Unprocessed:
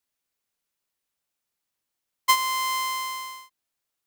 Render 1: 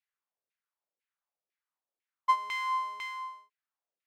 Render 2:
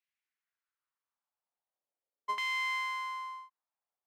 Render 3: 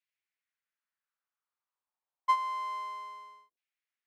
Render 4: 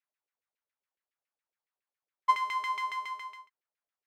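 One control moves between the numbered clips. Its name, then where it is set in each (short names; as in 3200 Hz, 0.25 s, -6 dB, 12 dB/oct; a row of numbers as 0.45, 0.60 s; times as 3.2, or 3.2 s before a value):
LFO band-pass, rate: 2, 0.42, 0.28, 7.2 Hz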